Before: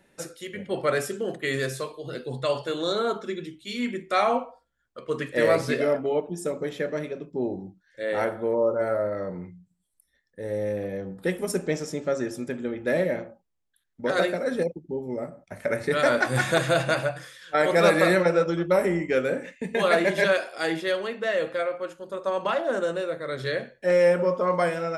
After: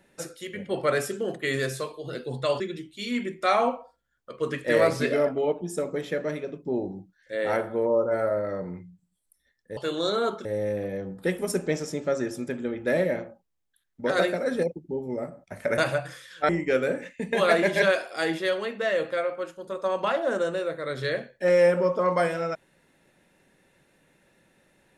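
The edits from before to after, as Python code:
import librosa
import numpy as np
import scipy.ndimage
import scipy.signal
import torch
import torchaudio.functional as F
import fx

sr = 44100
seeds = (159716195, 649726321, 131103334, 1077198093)

y = fx.edit(x, sr, fx.move(start_s=2.6, length_s=0.68, to_s=10.45),
    fx.cut(start_s=15.78, length_s=1.11),
    fx.cut(start_s=17.6, length_s=1.31), tone=tone)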